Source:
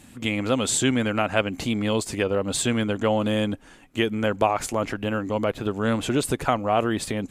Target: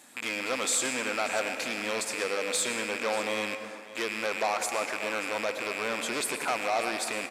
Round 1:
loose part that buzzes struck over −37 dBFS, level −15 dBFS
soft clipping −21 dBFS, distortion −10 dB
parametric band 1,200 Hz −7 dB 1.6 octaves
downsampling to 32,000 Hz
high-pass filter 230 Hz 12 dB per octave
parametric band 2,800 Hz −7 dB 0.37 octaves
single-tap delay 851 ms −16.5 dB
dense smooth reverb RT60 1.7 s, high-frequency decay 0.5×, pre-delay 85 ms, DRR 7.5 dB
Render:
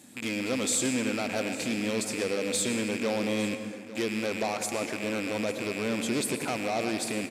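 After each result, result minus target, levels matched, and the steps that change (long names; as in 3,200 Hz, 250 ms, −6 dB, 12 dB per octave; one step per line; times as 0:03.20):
250 Hz band +9.5 dB; echo 265 ms late; 1,000 Hz band −4.5 dB
change: high-pass filter 520 Hz 12 dB per octave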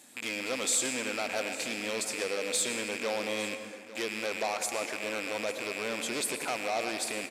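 echo 265 ms late; 1,000 Hz band −3.0 dB
change: single-tap delay 586 ms −16.5 dB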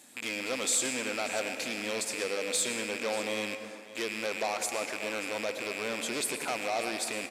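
1,000 Hz band −3.0 dB
remove: first parametric band 1,200 Hz −7 dB 1.6 octaves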